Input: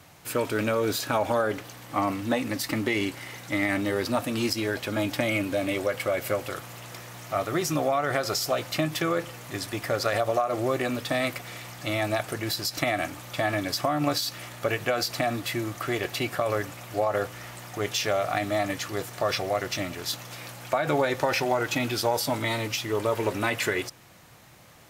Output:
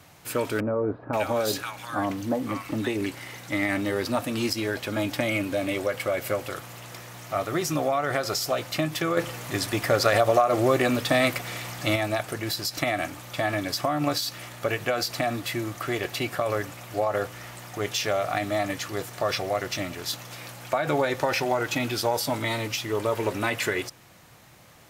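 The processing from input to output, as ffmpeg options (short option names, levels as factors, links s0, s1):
-filter_complex "[0:a]asettb=1/sr,asplit=3[s0][s1][s2];[s0]atrim=end=0.604[s3];[s1]atrim=start=0.6:end=3.06,asetpts=PTS-STARTPTS,afade=t=in:d=0.004:c=qsin,afade=t=out:st=2.456:d=0.004:c=qsin,acrossover=split=1200[s4][s5];[s5]adelay=530[s6];[s4][s6]amix=inputs=2:normalize=0,atrim=end_sample=108486[s7];[s2]atrim=start=3.056[s8];[s3][s7]acrossfade=d=0.004:c1=hsin:c2=qsin[s9];[s9][s8]acrossfade=d=0.004:c1=qsin:c2=hsin,asettb=1/sr,asplit=3[s10][s11][s12];[s10]atrim=end=9.174[s13];[s11]atrim=start=9.17:end=11.96,asetpts=PTS-STARTPTS,afade=t=in:d=0.004:c=qsin,afade=t=out:st=2.786:d=0.004:c=qsin,acontrast=30[s14];[s12]atrim=start=11.956[s15];[s13][s14]acrossfade=d=0.004:c1=hsin:c2=qsin[s16];[s16][s15]acrossfade=d=0.004:c1=qsin:c2=hsin"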